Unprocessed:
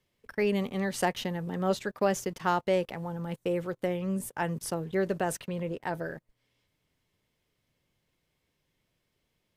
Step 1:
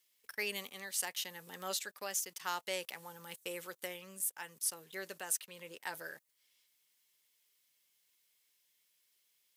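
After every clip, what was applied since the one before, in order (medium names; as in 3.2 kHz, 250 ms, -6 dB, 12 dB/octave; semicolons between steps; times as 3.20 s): differentiator; band-stop 680 Hz, Q 12; gain riding within 4 dB 0.5 s; trim +5 dB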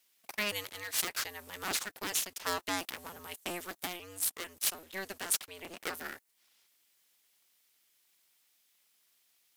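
cycle switcher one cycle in 2, inverted; bass shelf 150 Hz -4 dB; trim +4 dB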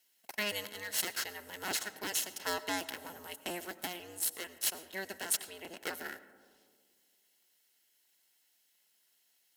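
comb of notches 1.2 kHz; reverberation RT60 1.9 s, pre-delay 60 ms, DRR 14.5 dB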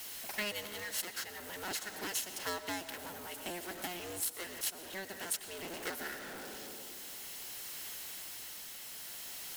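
jump at every zero crossing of -31 dBFS; tremolo triangle 0.54 Hz, depth 30%; transient shaper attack +4 dB, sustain -10 dB; trim -7 dB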